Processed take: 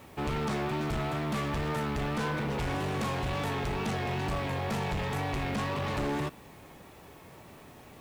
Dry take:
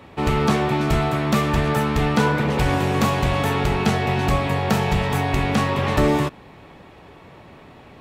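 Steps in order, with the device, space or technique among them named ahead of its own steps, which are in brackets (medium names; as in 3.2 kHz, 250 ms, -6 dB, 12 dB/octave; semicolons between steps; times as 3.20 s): compact cassette (saturation -21.5 dBFS, distortion -9 dB; low-pass 12 kHz; wow and flutter; white noise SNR 30 dB); trim -6.5 dB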